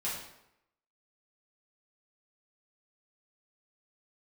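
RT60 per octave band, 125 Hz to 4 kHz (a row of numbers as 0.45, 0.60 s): 0.80, 0.80, 0.80, 0.80, 0.75, 0.60 s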